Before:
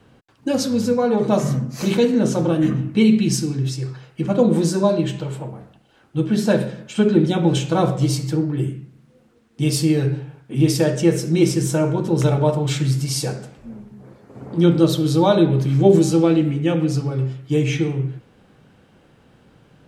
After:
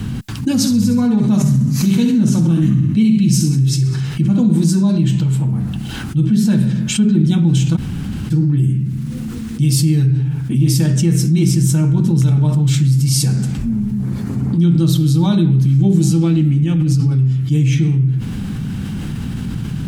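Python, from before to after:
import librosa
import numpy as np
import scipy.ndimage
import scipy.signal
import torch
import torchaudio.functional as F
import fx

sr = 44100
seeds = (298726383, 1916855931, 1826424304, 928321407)

y = fx.echo_feedback(x, sr, ms=66, feedback_pct=45, wet_db=-8.5, at=(0.6, 4.69), fade=0.02)
y = fx.over_compress(y, sr, threshold_db=-22.0, ratio=-1.0, at=(16.62, 17.07))
y = fx.edit(y, sr, fx.room_tone_fill(start_s=7.76, length_s=0.55, crossfade_s=0.02), tone=tone)
y = fx.curve_eq(y, sr, hz=(210.0, 540.0, 820.0, 13000.0), db=(0, -25, -17, -3))
y = fx.env_flatten(y, sr, amount_pct=70)
y = y * 10.0 ** (3.5 / 20.0)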